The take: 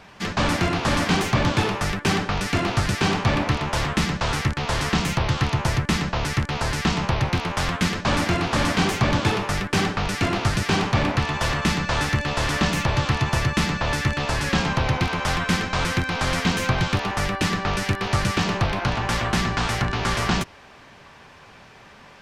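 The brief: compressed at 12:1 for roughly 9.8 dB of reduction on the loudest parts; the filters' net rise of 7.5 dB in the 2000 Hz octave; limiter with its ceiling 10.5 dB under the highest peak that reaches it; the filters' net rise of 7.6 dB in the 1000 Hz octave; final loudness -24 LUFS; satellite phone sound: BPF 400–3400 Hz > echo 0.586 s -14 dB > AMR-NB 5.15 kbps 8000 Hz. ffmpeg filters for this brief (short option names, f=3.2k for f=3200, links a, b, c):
-af "equalizer=f=1k:t=o:g=7.5,equalizer=f=2k:t=o:g=7.5,acompressor=threshold=-23dB:ratio=12,alimiter=limit=-21dB:level=0:latency=1,highpass=400,lowpass=3.4k,aecho=1:1:586:0.2,volume=10.5dB" -ar 8000 -c:a libopencore_amrnb -b:a 5150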